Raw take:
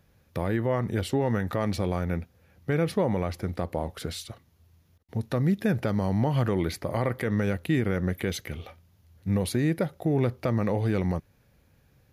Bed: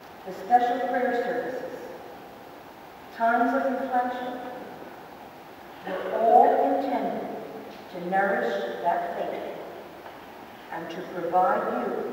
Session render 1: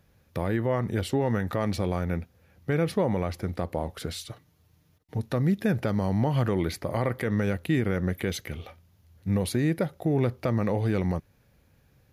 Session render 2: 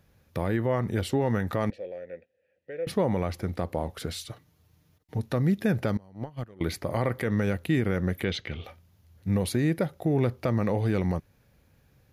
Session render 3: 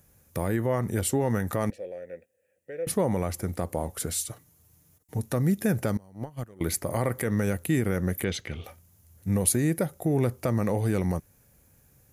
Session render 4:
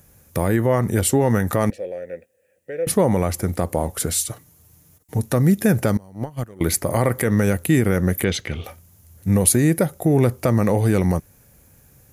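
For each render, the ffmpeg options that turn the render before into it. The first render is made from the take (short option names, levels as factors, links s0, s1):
-filter_complex "[0:a]asettb=1/sr,asplit=3[s0][s1][s2];[s0]atrim=end=4.264[s3];[s1]atrim=start=4.26:end=5.19,asetpts=PTS-STARTPTS,afade=t=in:d=0.004:c=qsin,afade=t=out:st=0.926:d=0.004:c=qsin,aecho=1:1:6.6:0.53,atrim=end_sample=41013[s4];[s2]atrim=start=5.186[s5];[s3][s4]acrossfade=d=0.004:c1=hsin:c2=qsin[s6];[s6][s5]acrossfade=d=0.004:c1=qsin:c2=hsin"
-filter_complex "[0:a]asettb=1/sr,asplit=3[s0][s1][s2];[s0]atrim=end=1.704[s3];[s1]atrim=start=1.7:end=2.87,asetpts=PTS-STARTPTS,afade=t=in:d=0.004:c=qsin,afade=t=out:st=1.166:d=0.004:c=qsin,asplit=3[s4][s5][s6];[s4]bandpass=f=530:t=q:w=8,volume=1[s7];[s5]bandpass=f=1840:t=q:w=8,volume=0.501[s8];[s6]bandpass=f=2480:t=q:w=8,volume=0.355[s9];[s7][s8][s9]amix=inputs=3:normalize=0[s10];[s2]atrim=start=2.866[s11];[s3][s10]acrossfade=d=0.004:c1=hsin:c2=qsin[s12];[s12][s11]acrossfade=d=0.004:c1=qsin:c2=hsin,asettb=1/sr,asplit=3[s13][s14][s15];[s13]atrim=end=5.974[s16];[s14]atrim=start=5.97:end=6.61,asetpts=PTS-STARTPTS,afade=t=in:d=0.004:c=qsin,afade=t=out:st=0.636:d=0.004:c=qsin,agate=range=0.0501:threshold=0.0794:ratio=16:release=100:detection=peak[s17];[s15]atrim=start=6.606[s18];[s16][s17]acrossfade=d=0.004:c1=hsin:c2=qsin[s19];[s19][s18]acrossfade=d=0.004:c1=qsin:c2=hsin,asettb=1/sr,asplit=3[s20][s21][s22];[s20]atrim=end=8.244[s23];[s21]atrim=start=8.24:end=8.64,asetpts=PTS-STARTPTS,afade=t=in:d=0.004:c=qsin,afade=t=out:st=0.396:d=0.004:c=qsin,lowpass=f=3600:t=q:w=1.7[s24];[s22]atrim=start=8.636[s25];[s23][s24]acrossfade=d=0.004:c1=hsin:c2=qsin[s26];[s26][s25]acrossfade=d=0.004:c1=qsin:c2=hsin"
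-af "highshelf=f=5700:t=q:w=1.5:g=12"
-af "volume=2.51,alimiter=limit=0.794:level=0:latency=1"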